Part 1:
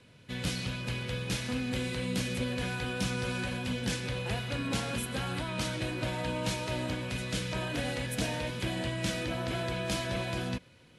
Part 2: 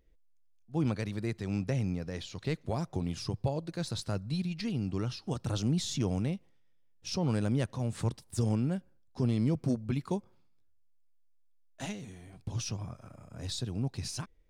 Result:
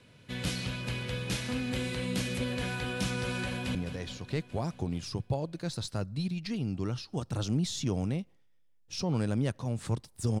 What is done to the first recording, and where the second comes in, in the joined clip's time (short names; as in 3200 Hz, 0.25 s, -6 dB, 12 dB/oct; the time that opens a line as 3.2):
part 1
3.44–3.75 echo throw 0.21 s, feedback 70%, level -10.5 dB
3.75 switch to part 2 from 1.89 s